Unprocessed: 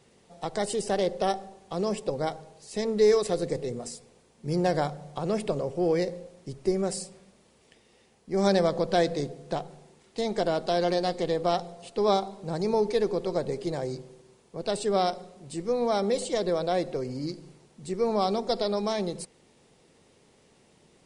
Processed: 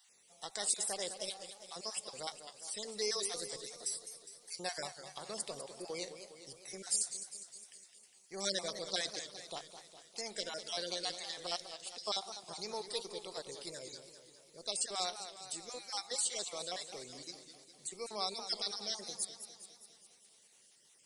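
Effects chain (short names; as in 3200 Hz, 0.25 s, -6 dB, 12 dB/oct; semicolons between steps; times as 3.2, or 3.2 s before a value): random spectral dropouts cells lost 35%; pre-emphasis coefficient 0.97; warbling echo 0.204 s, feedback 61%, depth 159 cents, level -10.5 dB; gain +5 dB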